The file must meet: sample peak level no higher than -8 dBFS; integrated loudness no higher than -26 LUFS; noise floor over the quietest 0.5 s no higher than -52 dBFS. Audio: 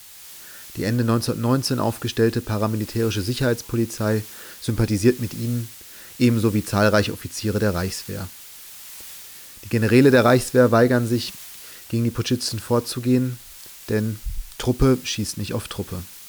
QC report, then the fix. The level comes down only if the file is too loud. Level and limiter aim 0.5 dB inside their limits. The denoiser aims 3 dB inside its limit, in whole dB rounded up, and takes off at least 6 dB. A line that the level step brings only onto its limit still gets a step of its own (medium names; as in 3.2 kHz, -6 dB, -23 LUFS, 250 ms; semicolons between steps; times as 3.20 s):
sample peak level -4.5 dBFS: fail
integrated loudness -21.5 LUFS: fail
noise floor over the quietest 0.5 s -42 dBFS: fail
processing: noise reduction 8 dB, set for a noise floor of -42 dBFS; trim -5 dB